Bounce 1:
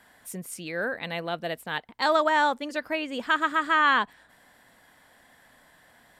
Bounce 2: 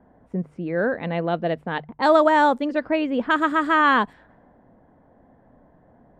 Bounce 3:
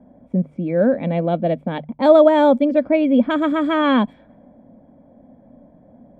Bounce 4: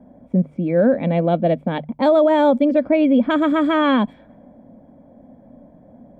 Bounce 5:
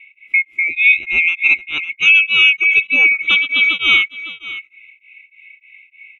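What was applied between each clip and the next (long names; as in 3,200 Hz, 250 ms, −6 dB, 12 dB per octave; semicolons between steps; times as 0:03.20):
low-pass that shuts in the quiet parts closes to 690 Hz, open at −21.5 dBFS; tilt shelving filter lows +7 dB; mains-hum notches 50/100/150 Hz; level +5 dB
low-shelf EQ 160 Hz +7.5 dB; hollow resonant body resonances 240/560/2,300/3,300 Hz, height 16 dB, ringing for 25 ms; level −7 dB
brickwall limiter −9.5 dBFS, peak gain reduction 8 dB; level +2 dB
neighbouring bands swapped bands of 2,000 Hz; single-tap delay 556 ms −15 dB; tremolo along a rectified sine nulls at 3.3 Hz; level +5 dB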